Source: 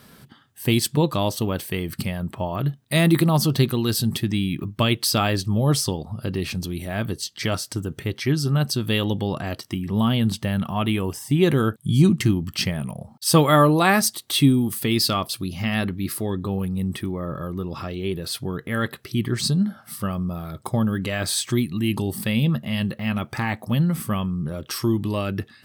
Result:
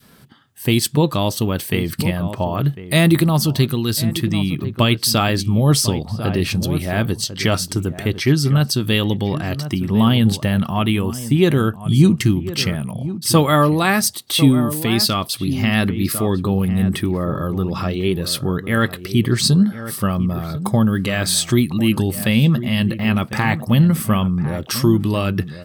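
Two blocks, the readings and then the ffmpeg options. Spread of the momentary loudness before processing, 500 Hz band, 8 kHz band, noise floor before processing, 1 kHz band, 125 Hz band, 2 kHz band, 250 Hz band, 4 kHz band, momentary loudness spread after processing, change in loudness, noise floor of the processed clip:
11 LU, +4.0 dB, +5.0 dB, −52 dBFS, +3.0 dB, +5.5 dB, +4.5 dB, +5.0 dB, +5.0 dB, 7 LU, +5.0 dB, −36 dBFS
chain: -filter_complex "[0:a]asplit=2[link_01][link_02];[link_02]adelay=1050,volume=-12dB,highshelf=frequency=4000:gain=-23.6[link_03];[link_01][link_03]amix=inputs=2:normalize=0,adynamicequalizer=threshold=0.0251:dfrequency=690:dqfactor=0.7:tfrequency=690:tqfactor=0.7:attack=5:release=100:ratio=0.375:range=2.5:mode=cutabove:tftype=bell,dynaudnorm=framelen=130:gausssize=9:maxgain=8dB"

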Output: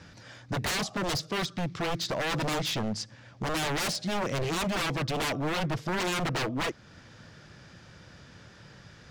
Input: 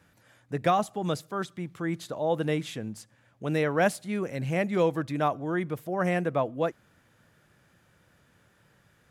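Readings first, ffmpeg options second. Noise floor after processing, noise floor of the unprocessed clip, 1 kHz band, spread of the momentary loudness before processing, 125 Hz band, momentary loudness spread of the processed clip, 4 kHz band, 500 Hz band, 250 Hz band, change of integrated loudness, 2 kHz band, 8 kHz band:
−53 dBFS, −65 dBFS, −2.5 dB, 10 LU, −0.5 dB, 6 LU, +11.0 dB, −5.5 dB, −2.5 dB, −1.5 dB, +2.0 dB, +9.0 dB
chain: -filter_complex "[0:a]lowshelf=frequency=250:gain=4.5,asplit=2[link_01][link_02];[link_02]acompressor=threshold=-40dB:ratio=6,volume=-1dB[link_03];[link_01][link_03]amix=inputs=2:normalize=0,lowpass=frequency=5200:width_type=q:width=2.8,aeval=exprs='0.0376*(abs(mod(val(0)/0.0376+3,4)-2)-1)':channel_layout=same,volume=4dB"

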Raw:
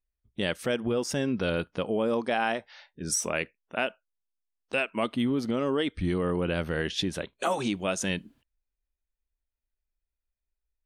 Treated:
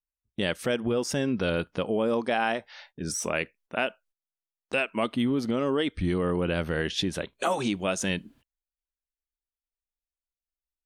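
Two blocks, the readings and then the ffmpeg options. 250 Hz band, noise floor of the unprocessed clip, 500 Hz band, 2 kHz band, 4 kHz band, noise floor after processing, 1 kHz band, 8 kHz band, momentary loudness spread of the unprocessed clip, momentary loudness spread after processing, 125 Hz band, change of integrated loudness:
+1.0 dB, below −85 dBFS, +1.0 dB, +1.0 dB, +1.0 dB, below −85 dBFS, +1.0 dB, −2.0 dB, 5 LU, 6 LU, +1.5 dB, +1.0 dB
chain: -filter_complex "[0:a]deesser=0.55,agate=range=-19dB:threshold=-59dB:ratio=16:detection=peak,asplit=2[link_01][link_02];[link_02]acompressor=threshold=-41dB:ratio=6,volume=-2dB[link_03];[link_01][link_03]amix=inputs=2:normalize=0"

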